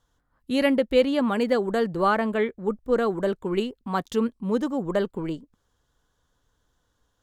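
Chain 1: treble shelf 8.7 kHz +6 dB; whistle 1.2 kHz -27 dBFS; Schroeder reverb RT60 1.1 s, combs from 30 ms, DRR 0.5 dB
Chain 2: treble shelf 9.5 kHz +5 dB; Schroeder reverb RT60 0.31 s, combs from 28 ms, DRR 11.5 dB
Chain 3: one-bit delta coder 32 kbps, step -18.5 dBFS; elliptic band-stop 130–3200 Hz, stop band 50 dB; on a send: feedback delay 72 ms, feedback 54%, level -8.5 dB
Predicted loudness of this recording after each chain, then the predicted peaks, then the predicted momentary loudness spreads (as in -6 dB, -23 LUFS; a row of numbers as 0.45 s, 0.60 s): -19.0 LUFS, -24.5 LUFS, -31.0 LUFS; -5.5 dBFS, -7.0 dBFS, -15.0 dBFS; 4 LU, 8 LU, 5 LU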